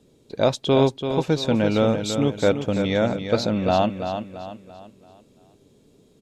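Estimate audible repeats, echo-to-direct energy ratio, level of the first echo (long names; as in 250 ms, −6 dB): 4, −7.0 dB, −8.0 dB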